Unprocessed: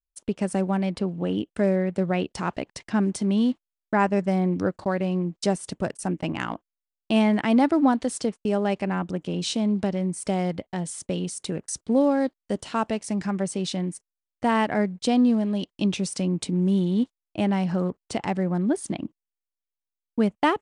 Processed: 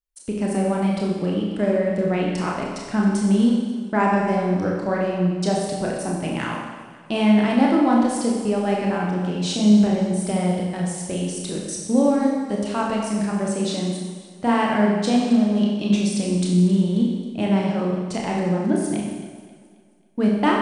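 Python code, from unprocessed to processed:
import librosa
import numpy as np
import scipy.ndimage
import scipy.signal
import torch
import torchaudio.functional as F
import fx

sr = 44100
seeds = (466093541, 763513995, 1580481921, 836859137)

y = fx.chorus_voices(x, sr, voices=6, hz=0.84, base_ms=29, depth_ms=5.0, mix_pct=35)
y = fx.rev_schroeder(y, sr, rt60_s=1.3, comb_ms=30, drr_db=-0.5)
y = fx.echo_warbled(y, sr, ms=268, feedback_pct=46, rate_hz=2.8, cents=54, wet_db=-17.0)
y = y * 10.0 ** (2.5 / 20.0)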